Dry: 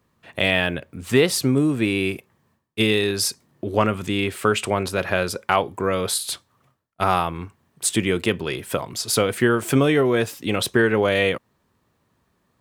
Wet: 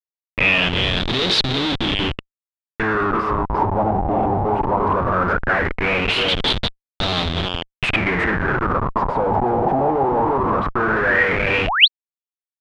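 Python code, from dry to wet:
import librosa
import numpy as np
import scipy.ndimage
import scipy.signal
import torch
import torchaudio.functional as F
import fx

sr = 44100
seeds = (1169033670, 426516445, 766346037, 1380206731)

y = fx.peak_eq(x, sr, hz=980.0, db=-7.5, octaves=0.99)
y = fx.hum_notches(y, sr, base_hz=50, count=9)
y = fx.echo_thinned(y, sr, ms=347, feedback_pct=26, hz=250.0, wet_db=-7.0)
y = fx.tube_stage(y, sr, drive_db=17.0, bias=0.75, at=(1.45, 2.8))
y = fx.schmitt(y, sr, flips_db=-27.0)
y = fx.spec_paint(y, sr, seeds[0], shape='rise', start_s=11.67, length_s=0.21, low_hz=570.0, high_hz=4600.0, level_db=-24.0)
y = fx.filter_lfo_lowpass(y, sr, shape='sine', hz=0.18, low_hz=790.0, high_hz=3800.0, q=7.2)
y = y * librosa.db_to_amplitude(2.5)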